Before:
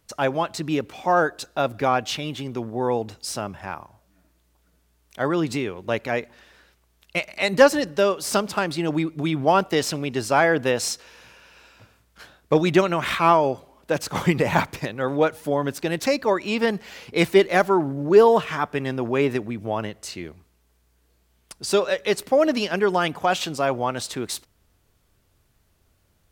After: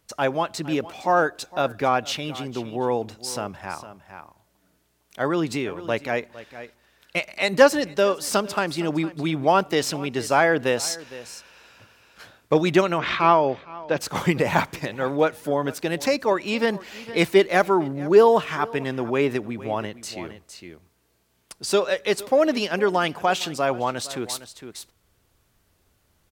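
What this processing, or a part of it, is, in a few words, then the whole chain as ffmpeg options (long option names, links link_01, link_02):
ducked delay: -filter_complex "[0:a]asettb=1/sr,asplit=3[link_01][link_02][link_03];[link_01]atrim=end=12.984[link_04];[link_02]atrim=start=12.98:end=13.98,asetpts=PTS-STARTPTS,afade=type=in:duration=0.004:curve=qsin,afade=type=out:start_time=0.996:duration=0.004:curve=qsin,lowpass=frequency=5100:width=0.5412,lowpass=frequency=5100:width=1.3066[link_05];[link_03]atrim=start=13.976[link_06];[link_04][link_05]acrossfade=duration=0.004:curve1=hsin:curve2=qsin[link_07];[link_07][link_06]acrossfade=duration=0.004:curve1=qsin:curve2=hsin,lowshelf=frequency=140:gain=-4.5,asplit=3[link_08][link_09][link_10];[link_09]adelay=459,volume=-4dB[link_11];[link_10]apad=whole_len=1180543[link_12];[link_11][link_12]sidechaincompress=threshold=-32dB:ratio=12:attack=16:release=1150[link_13];[link_08][link_13]amix=inputs=2:normalize=0"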